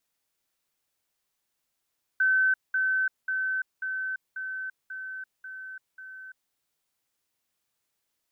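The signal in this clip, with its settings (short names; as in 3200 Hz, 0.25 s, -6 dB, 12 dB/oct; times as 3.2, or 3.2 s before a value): level ladder 1530 Hz -19.5 dBFS, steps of -3 dB, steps 8, 0.34 s 0.20 s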